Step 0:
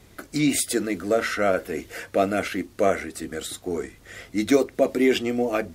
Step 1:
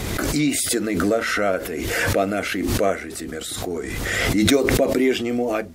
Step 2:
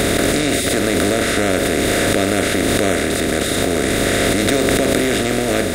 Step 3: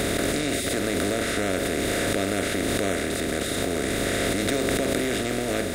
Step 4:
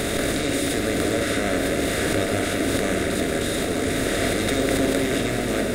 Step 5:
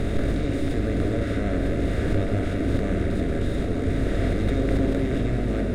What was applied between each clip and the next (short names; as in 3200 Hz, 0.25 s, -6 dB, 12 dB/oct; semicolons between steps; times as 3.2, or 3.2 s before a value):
backwards sustainer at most 23 dB/s
per-bin compression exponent 0.2; gain -5.5 dB
bit-crush 8-bit; gain -8.5 dB
shoebox room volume 190 m³, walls hard, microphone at 0.37 m
tracing distortion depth 0.034 ms; RIAA curve playback; gain -7.5 dB